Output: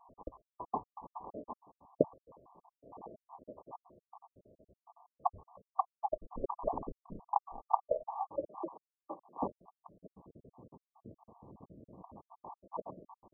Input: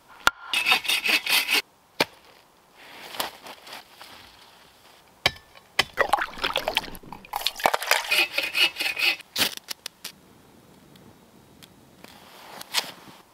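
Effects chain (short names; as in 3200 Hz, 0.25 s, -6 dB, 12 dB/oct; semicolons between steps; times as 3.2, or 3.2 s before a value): random spectral dropouts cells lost 66%; 8.48–9.39 HPF 190 Hz 24 dB/oct; wow and flutter 18 cents; brick-wall FIR low-pass 1200 Hz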